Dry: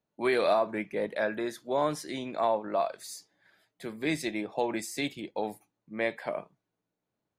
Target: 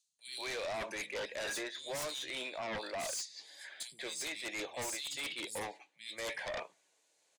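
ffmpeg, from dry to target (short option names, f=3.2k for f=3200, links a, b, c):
-filter_complex "[0:a]aderivative,areverse,acompressor=threshold=-57dB:ratio=20,areverse,highpass=140,equalizer=f=230:t=q:w=4:g=-7,equalizer=f=540:t=q:w=4:g=5,equalizer=f=1.3k:t=q:w=4:g=-8,equalizer=f=5.4k:t=q:w=4:g=-4,lowpass=f=7.9k:w=0.5412,lowpass=f=7.9k:w=1.3066,acrossover=split=180|3500[a][b][c];[a]adelay=80[d];[b]adelay=190[e];[d][e][c]amix=inputs=3:normalize=0,aeval=exprs='0.00355*sin(PI/2*3.16*val(0)/0.00355)':c=same,volume=14dB"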